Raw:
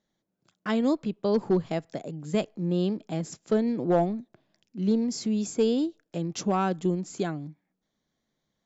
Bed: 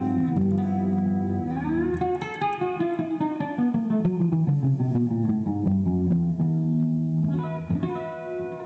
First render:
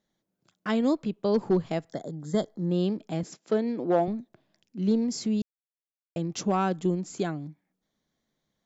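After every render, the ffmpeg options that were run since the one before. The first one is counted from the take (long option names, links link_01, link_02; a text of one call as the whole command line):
ffmpeg -i in.wav -filter_complex "[0:a]asettb=1/sr,asplit=3[link_01][link_02][link_03];[link_01]atrim=end=1.914[link_04];[link_02]atrim=start=1.91:end=2.71,asetpts=PTS-STARTPTS,afade=type=in:duration=0.004:curve=qsin,afade=type=out:start_time=0.796:duration=0.004:curve=qsin,asuperstop=centerf=2600:order=12:qfactor=2.4[link_05];[link_03]atrim=start=2.706[link_06];[link_04][link_05]acrossfade=duration=0.004:curve1=hsin:curve2=qsin[link_07];[link_07][link_06]acrossfade=duration=0.004:curve1=qsin:curve2=hsin,asettb=1/sr,asplit=3[link_08][link_09][link_10];[link_08]atrim=end=3.234[link_11];[link_09]atrim=start=3.23:end=4.08,asetpts=PTS-STARTPTS,afade=type=in:duration=0.004:curve=qsin,afade=type=out:start_time=0.846:duration=0.004:curve=qsin,highpass=230,lowpass=6100[link_12];[link_10]atrim=start=4.076[link_13];[link_11][link_12]acrossfade=duration=0.004:curve1=hsin:curve2=qsin[link_14];[link_14][link_13]acrossfade=duration=0.004:curve1=qsin:curve2=hsin,asplit=3[link_15][link_16][link_17];[link_15]atrim=end=5.42,asetpts=PTS-STARTPTS,afade=type=out:start_time=5.416:duration=0.004:curve=hsin[link_18];[link_16]atrim=start=5.42:end=6.16,asetpts=PTS-STARTPTS,volume=0[link_19];[link_17]atrim=start=6.16,asetpts=PTS-STARTPTS,afade=type=in:duration=0.004:curve=hsin[link_20];[link_18][link_19][link_20]concat=n=3:v=0:a=1" out.wav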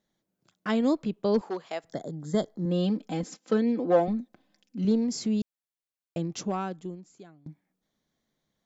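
ffmpeg -i in.wav -filter_complex "[0:a]asettb=1/sr,asplit=3[link_01][link_02][link_03];[link_01]atrim=end=1.414[link_04];[link_02]atrim=start=1.41:end=1.84,asetpts=PTS-STARTPTS,afade=type=in:duration=0.004:curve=qsin,afade=type=out:start_time=0.426:duration=0.004:curve=qsin,highpass=620[link_05];[link_03]atrim=start=1.836[link_06];[link_04][link_05]acrossfade=duration=0.004:curve1=hsin:curve2=qsin[link_07];[link_07][link_06]acrossfade=duration=0.004:curve1=qsin:curve2=hsin,asettb=1/sr,asplit=3[link_08][link_09][link_10];[link_08]atrim=end=2.654[link_11];[link_09]atrim=start=2.65:end=4.85,asetpts=PTS-STARTPTS,afade=type=in:duration=0.004:curve=qsin,afade=type=out:start_time=2.196:duration=0.004:curve=qsin,aecho=1:1:3.9:0.69,atrim=end_sample=97020[link_12];[link_10]atrim=start=4.846[link_13];[link_11][link_12]acrossfade=duration=0.004:curve1=hsin:curve2=qsin[link_14];[link_14][link_13]acrossfade=duration=0.004:curve1=qsin:curve2=hsin,asplit=2[link_15][link_16];[link_15]atrim=end=7.46,asetpts=PTS-STARTPTS,afade=type=out:start_time=6.2:duration=1.26:curve=qua:silence=0.0707946[link_17];[link_16]atrim=start=7.46,asetpts=PTS-STARTPTS,afade=type=in:duration=0.004:curve=hsin:silence=0.0707946[link_18];[link_17][link_18]concat=n=2:v=0:a=1" out.wav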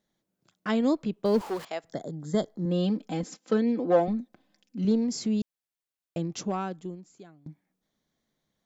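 ffmpeg -i in.wav -filter_complex "[0:a]asettb=1/sr,asplit=3[link_01][link_02][link_03];[link_01]atrim=end=1.254[link_04];[link_02]atrim=start=1.25:end=1.65,asetpts=PTS-STARTPTS,afade=type=in:duration=0.004:curve=qsin,afade=type=out:start_time=0.396:duration=0.004:curve=qsin,aeval=exprs='val(0)+0.5*0.0119*sgn(val(0))':channel_layout=same[link_05];[link_03]atrim=start=1.646[link_06];[link_04][link_05]acrossfade=duration=0.004:curve1=hsin:curve2=qsin[link_07];[link_07][link_06]acrossfade=duration=0.004:curve1=qsin:curve2=hsin" out.wav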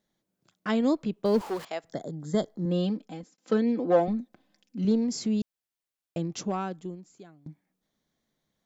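ffmpeg -i in.wav -filter_complex "[0:a]asplit=2[link_01][link_02];[link_01]atrim=end=3.38,asetpts=PTS-STARTPTS,afade=type=out:start_time=2.77:duration=0.61[link_03];[link_02]atrim=start=3.38,asetpts=PTS-STARTPTS,afade=type=in:duration=0.004:curve=hsin[link_04];[link_03][link_04]concat=n=2:v=0:a=1" out.wav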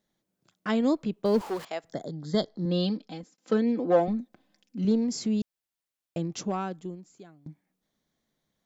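ffmpeg -i in.wav -filter_complex "[0:a]asettb=1/sr,asplit=3[link_01][link_02][link_03];[link_01]atrim=end=2.064[link_04];[link_02]atrim=start=2.06:end=3.18,asetpts=PTS-STARTPTS,afade=type=in:duration=0.004:curve=qsin,afade=type=out:start_time=1.116:duration=0.004:curve=qsin,lowpass=frequency=4500:width_type=q:width=3.5[link_05];[link_03]atrim=start=3.176[link_06];[link_04][link_05]acrossfade=duration=0.004:curve1=hsin:curve2=qsin[link_07];[link_07][link_06]acrossfade=duration=0.004:curve1=qsin:curve2=hsin" out.wav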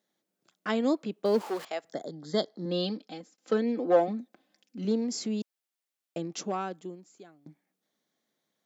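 ffmpeg -i in.wav -af "highpass=260,bandreject=frequency=990:width=17" out.wav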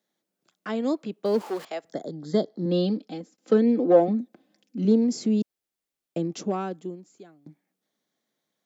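ffmpeg -i in.wav -filter_complex "[0:a]acrossover=split=510|760[link_01][link_02][link_03];[link_01]dynaudnorm=framelen=300:gausssize=13:maxgain=9dB[link_04];[link_03]alimiter=level_in=3dB:limit=-24dB:level=0:latency=1:release=207,volume=-3dB[link_05];[link_04][link_02][link_05]amix=inputs=3:normalize=0" out.wav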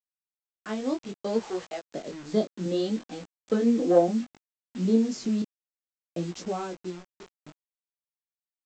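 ffmpeg -i in.wav -af "aresample=16000,acrusher=bits=6:mix=0:aa=0.000001,aresample=44100,flanger=delay=16.5:depth=6.7:speed=0.63" out.wav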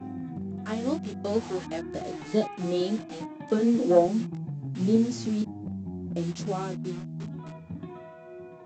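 ffmpeg -i in.wav -i bed.wav -filter_complex "[1:a]volume=-13dB[link_01];[0:a][link_01]amix=inputs=2:normalize=0" out.wav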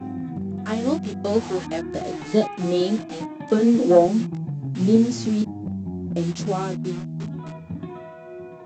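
ffmpeg -i in.wav -af "volume=6dB,alimiter=limit=-3dB:level=0:latency=1" out.wav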